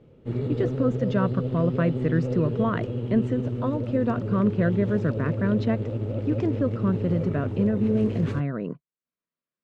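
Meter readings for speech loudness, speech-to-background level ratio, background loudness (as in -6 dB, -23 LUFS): -26.5 LUFS, 3.0 dB, -29.5 LUFS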